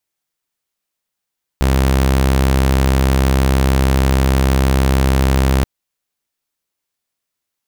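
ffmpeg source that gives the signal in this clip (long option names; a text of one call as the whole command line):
ffmpeg -f lavfi -i "aevalsrc='0.376*(2*mod(66.4*t,1)-1)':duration=4.03:sample_rate=44100" out.wav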